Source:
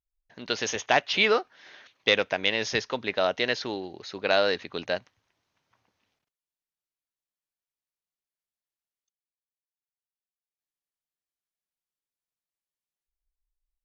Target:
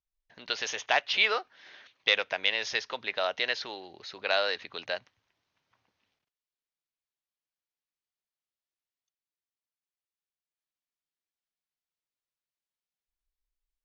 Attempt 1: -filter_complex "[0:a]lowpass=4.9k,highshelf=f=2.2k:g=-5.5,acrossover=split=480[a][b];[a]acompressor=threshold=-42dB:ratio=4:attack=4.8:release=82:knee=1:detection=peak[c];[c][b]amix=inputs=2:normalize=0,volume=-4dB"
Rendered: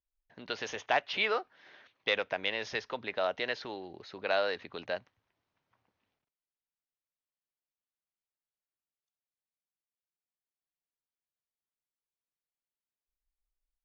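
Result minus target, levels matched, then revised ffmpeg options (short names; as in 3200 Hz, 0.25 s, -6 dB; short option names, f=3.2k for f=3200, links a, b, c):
compressor: peak gain reduction -6.5 dB; 4000 Hz band -3.5 dB
-filter_complex "[0:a]lowpass=4.9k,highshelf=f=2.2k:g=5.5,acrossover=split=480[a][b];[a]acompressor=threshold=-50.5dB:ratio=4:attack=4.8:release=82:knee=1:detection=peak[c];[c][b]amix=inputs=2:normalize=0,volume=-4dB"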